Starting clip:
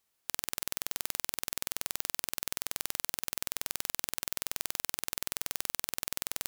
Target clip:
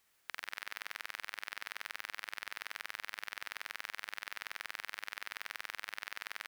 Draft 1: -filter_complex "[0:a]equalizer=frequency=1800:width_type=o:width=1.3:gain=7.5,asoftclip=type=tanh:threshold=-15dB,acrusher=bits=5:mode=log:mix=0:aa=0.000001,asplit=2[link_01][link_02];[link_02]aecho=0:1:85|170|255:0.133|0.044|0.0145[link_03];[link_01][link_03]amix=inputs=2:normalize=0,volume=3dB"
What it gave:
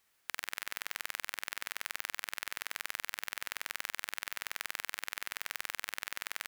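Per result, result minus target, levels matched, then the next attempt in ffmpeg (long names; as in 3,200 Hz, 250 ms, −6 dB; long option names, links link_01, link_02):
echo-to-direct −8.5 dB; soft clipping: distortion −7 dB
-filter_complex "[0:a]equalizer=frequency=1800:width_type=o:width=1.3:gain=7.5,asoftclip=type=tanh:threshold=-15dB,acrusher=bits=5:mode=log:mix=0:aa=0.000001,asplit=2[link_01][link_02];[link_02]aecho=0:1:85|170|255|340:0.355|0.117|0.0386|0.0128[link_03];[link_01][link_03]amix=inputs=2:normalize=0,volume=3dB"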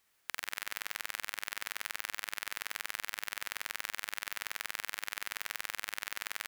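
soft clipping: distortion −7 dB
-filter_complex "[0:a]equalizer=frequency=1800:width_type=o:width=1.3:gain=7.5,asoftclip=type=tanh:threshold=-26dB,acrusher=bits=5:mode=log:mix=0:aa=0.000001,asplit=2[link_01][link_02];[link_02]aecho=0:1:85|170|255|340:0.355|0.117|0.0386|0.0128[link_03];[link_01][link_03]amix=inputs=2:normalize=0,volume=3dB"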